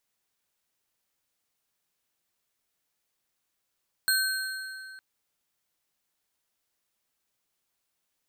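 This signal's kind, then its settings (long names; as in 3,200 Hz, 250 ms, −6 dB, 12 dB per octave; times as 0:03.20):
struck metal bar, length 0.91 s, lowest mode 1,540 Hz, modes 4, decay 2.67 s, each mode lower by 2 dB, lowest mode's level −23.5 dB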